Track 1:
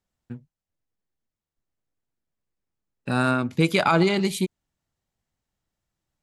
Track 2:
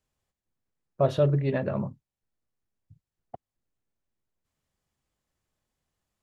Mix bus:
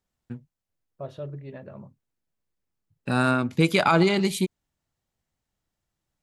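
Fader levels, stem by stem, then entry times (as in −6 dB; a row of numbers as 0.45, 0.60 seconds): 0.0, −13.5 decibels; 0.00, 0.00 seconds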